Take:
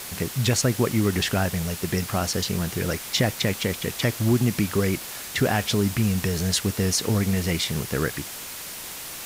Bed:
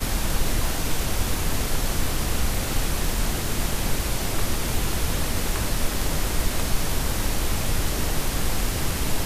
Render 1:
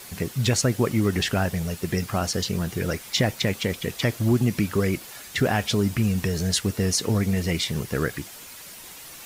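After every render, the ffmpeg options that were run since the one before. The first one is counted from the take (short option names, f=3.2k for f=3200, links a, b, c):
-af "afftdn=nr=8:nf=-37"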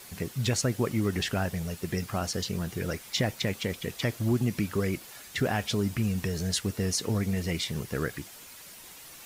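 -af "volume=-5.5dB"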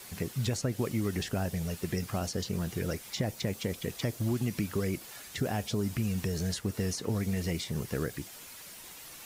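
-filter_complex "[0:a]acrossover=split=900|1800|4400[a][b][c][d];[a]acompressor=threshold=-27dB:ratio=4[e];[b]acompressor=threshold=-51dB:ratio=4[f];[c]acompressor=threshold=-47dB:ratio=4[g];[d]acompressor=threshold=-39dB:ratio=4[h];[e][f][g][h]amix=inputs=4:normalize=0"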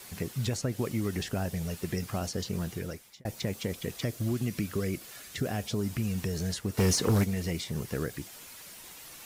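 -filter_complex "[0:a]asettb=1/sr,asplit=3[a][b][c];[a]atrim=end=3.994[d];[b]atrim=start=3.99:end=5.63,asetpts=PTS-STARTPTS,afade=t=in:d=0.004:c=qsin,afade=t=out:st=1.636:d=0.004:c=qsin,equalizer=f=880:t=o:w=0.27:g=-7.5[e];[c]atrim=start=5.626[f];[d][e]acrossfade=d=0.004:c1=hsin:c2=qsin[g];[g][f]acrossfade=d=0.004:c1=qsin:c2=hsin,asplit=3[h][i][j];[h]afade=t=out:st=6.77:d=0.02[k];[i]aeval=exprs='0.112*sin(PI/2*2*val(0)/0.112)':c=same,afade=t=in:st=6.77:d=0.02,afade=t=out:st=7.23:d=0.02[l];[j]afade=t=in:st=7.23:d=0.02[m];[k][l][m]amix=inputs=3:normalize=0,asplit=2[n][o];[n]atrim=end=3.25,asetpts=PTS-STARTPTS,afade=t=out:st=2.63:d=0.62[p];[o]atrim=start=3.25,asetpts=PTS-STARTPTS,afade=t=in:d=0.004:c=hsin[q];[p][q]concat=n=2:v=0:a=1"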